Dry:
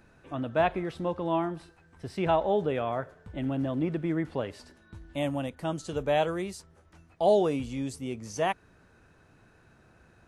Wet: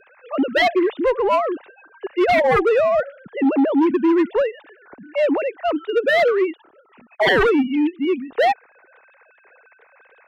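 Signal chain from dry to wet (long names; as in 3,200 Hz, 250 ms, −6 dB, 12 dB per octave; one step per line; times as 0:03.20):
three sine waves on the formant tracks
sine wavefolder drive 12 dB, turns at −12 dBFS
harmonic generator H 5 −32 dB, 7 −34 dB, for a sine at −11.5 dBFS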